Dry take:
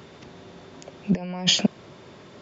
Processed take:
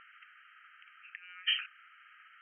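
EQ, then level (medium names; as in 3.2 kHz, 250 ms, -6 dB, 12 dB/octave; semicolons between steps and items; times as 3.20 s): brick-wall FIR band-pass 1.2–3.2 kHz; distance through air 450 m; +2.5 dB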